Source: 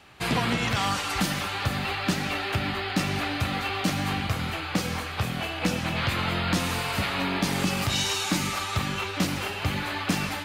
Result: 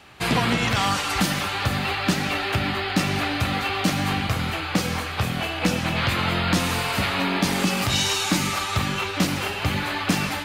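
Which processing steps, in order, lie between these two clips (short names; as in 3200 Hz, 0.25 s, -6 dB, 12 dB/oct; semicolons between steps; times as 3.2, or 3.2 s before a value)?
de-hum 46.51 Hz, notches 3; gain +4 dB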